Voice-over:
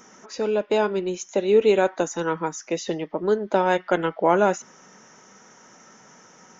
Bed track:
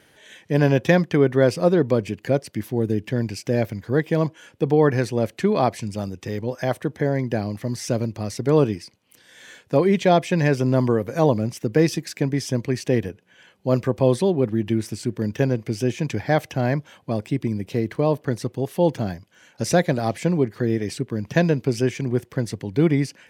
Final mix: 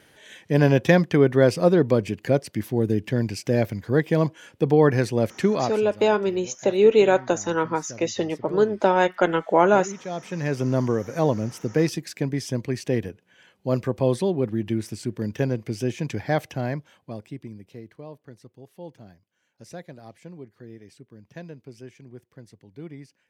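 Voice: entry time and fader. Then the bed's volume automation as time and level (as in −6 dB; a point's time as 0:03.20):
5.30 s, +1.5 dB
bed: 0:05.45 0 dB
0:06.04 −17.5 dB
0:10.03 −17.5 dB
0:10.62 −3.5 dB
0:16.44 −3.5 dB
0:18.11 −21 dB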